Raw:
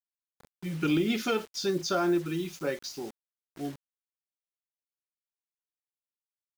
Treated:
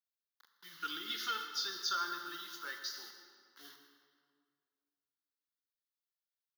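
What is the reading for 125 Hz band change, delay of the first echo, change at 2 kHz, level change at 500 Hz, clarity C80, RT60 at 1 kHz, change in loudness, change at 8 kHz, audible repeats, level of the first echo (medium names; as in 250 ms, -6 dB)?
under -35 dB, 160 ms, -4.0 dB, -25.5 dB, 6.5 dB, 2.0 s, -8.0 dB, -5.0 dB, 1, -17.0 dB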